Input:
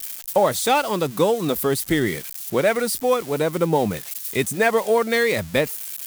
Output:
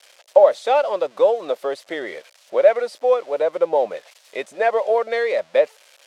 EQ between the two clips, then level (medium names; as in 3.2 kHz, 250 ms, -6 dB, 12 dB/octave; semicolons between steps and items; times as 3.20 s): resonant high-pass 570 Hz, resonance Q 4.9; low-pass 4 kHz 12 dB/octave; -5.5 dB